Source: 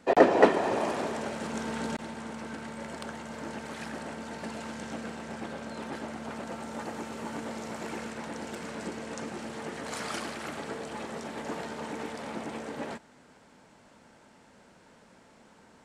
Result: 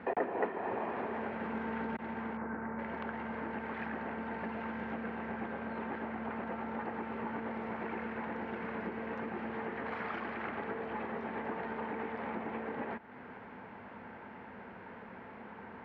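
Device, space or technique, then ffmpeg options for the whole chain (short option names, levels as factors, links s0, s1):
bass amplifier: -filter_complex "[0:a]asettb=1/sr,asplit=3[s0][s1][s2];[s0]atrim=end=2.374[s3];[s1]atrim=start=2.37:end=2.79,asetpts=PTS-STARTPTS,afade=t=in:d=0.004:c=qsin,afade=t=out:st=0.416:d=0.004:c=qsin,lowpass=f=1800:w=0.5412,lowpass=f=1800:w=1.3066[s4];[s2]atrim=start=2.786[s5];[s3][s4]acrossfade=d=0.004:c1=hsin:c2=qsin[s6];[s6][s5]acrossfade=d=0.004:c1=qsin:c2=hsin,acompressor=threshold=0.00398:ratio=3,highpass=81,equalizer=f=150:t=q:w=4:g=-10,equalizer=f=300:t=q:w=4:g=-7,equalizer=f=590:t=q:w=4:g=-7,equalizer=f=1300:t=q:w=4:g=-3,lowpass=f=2200:w=0.5412,lowpass=f=2200:w=1.3066,volume=3.76"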